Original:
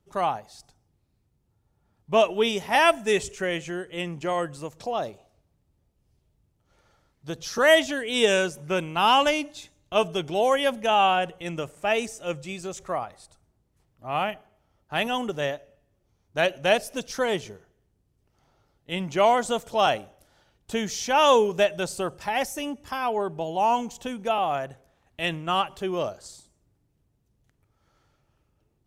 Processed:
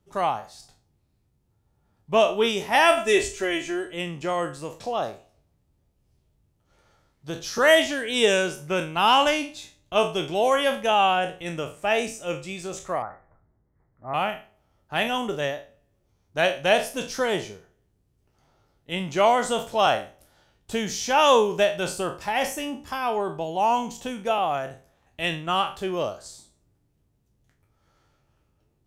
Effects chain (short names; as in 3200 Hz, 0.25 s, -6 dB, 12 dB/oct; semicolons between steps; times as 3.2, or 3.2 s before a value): spectral trails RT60 0.34 s; 2.97–3.93 comb 3 ms, depth 77%; 13.02–14.14 steep low-pass 2100 Hz 96 dB/oct